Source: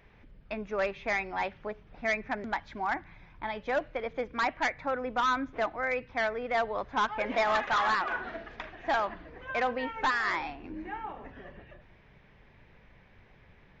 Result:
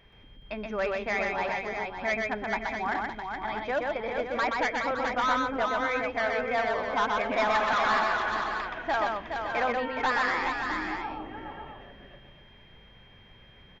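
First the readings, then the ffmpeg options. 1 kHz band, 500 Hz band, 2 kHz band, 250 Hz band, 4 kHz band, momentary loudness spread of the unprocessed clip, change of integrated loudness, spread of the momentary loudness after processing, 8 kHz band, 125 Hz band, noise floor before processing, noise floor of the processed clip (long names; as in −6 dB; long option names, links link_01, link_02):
+3.0 dB, +3.0 dB, +3.0 dB, +3.0 dB, +3.5 dB, 14 LU, +3.0 dB, 9 LU, can't be measured, +3.0 dB, −59 dBFS, −54 dBFS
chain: -af "aeval=exprs='val(0)+0.000708*sin(2*PI*3200*n/s)':channel_layout=same,aecho=1:1:125|420|562|659:0.708|0.531|0.355|0.376"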